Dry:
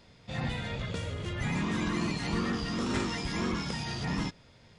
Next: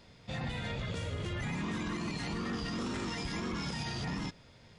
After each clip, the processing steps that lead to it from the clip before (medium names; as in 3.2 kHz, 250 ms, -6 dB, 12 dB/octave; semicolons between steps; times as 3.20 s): peak limiter -28 dBFS, peak gain reduction 9.5 dB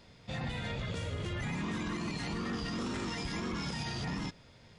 no audible change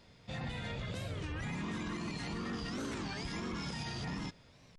warped record 33 1/3 rpm, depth 250 cents; trim -3 dB